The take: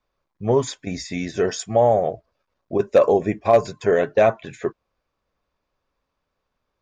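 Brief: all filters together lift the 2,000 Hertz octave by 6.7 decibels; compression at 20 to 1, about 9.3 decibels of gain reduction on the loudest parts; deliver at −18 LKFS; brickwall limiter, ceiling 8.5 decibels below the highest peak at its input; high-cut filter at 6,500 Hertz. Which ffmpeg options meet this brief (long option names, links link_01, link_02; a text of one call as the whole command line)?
ffmpeg -i in.wav -af "lowpass=6500,equalizer=frequency=2000:width_type=o:gain=8.5,acompressor=threshold=-18dB:ratio=20,volume=10.5dB,alimiter=limit=-5.5dB:level=0:latency=1" out.wav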